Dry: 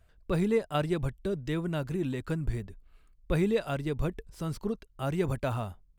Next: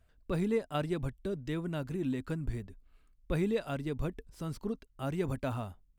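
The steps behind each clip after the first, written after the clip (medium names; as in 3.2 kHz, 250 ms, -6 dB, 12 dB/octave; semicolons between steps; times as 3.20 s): peaking EQ 260 Hz +7 dB 0.24 oct; trim -4.5 dB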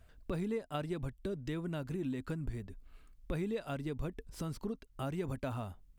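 compression 2.5:1, threshold -46 dBFS, peak gain reduction 13.5 dB; trim +6.5 dB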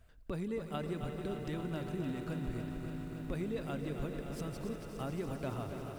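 echo with a slow build-up 88 ms, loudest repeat 5, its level -14.5 dB; bit-crushed delay 283 ms, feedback 80%, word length 10-bit, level -8.5 dB; trim -2 dB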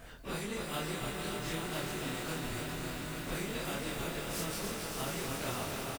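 phase randomisation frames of 100 ms; doubling 25 ms -5 dB; spectrum-flattening compressor 2:1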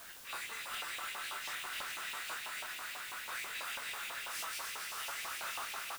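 LFO high-pass saw up 6.1 Hz 880–2700 Hz; in parallel at -12 dB: word length cut 6-bit, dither triangular; on the sum: wavefolder -29 dBFS; trim -5 dB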